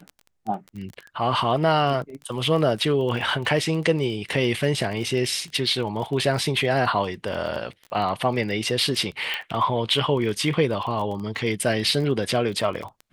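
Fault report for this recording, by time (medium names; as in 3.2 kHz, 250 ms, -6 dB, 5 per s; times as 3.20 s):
crackle 22 per s -30 dBFS
9.34 s: pop -14 dBFS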